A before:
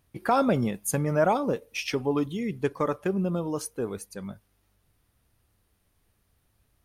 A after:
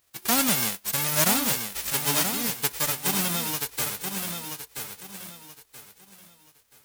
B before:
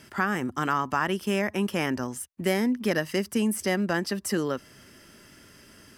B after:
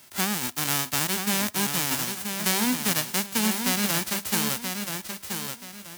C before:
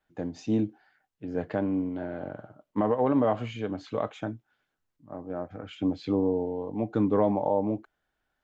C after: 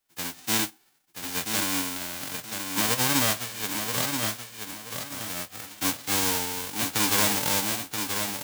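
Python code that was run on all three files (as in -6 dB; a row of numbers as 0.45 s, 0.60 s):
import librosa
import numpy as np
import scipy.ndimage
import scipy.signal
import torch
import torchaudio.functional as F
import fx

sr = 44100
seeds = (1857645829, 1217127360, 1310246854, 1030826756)

p1 = fx.envelope_flatten(x, sr, power=0.1)
y = p1 + fx.echo_feedback(p1, sr, ms=979, feedback_pct=29, wet_db=-6.0, dry=0)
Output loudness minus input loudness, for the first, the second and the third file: +3.0 LU, +2.5 LU, +3.5 LU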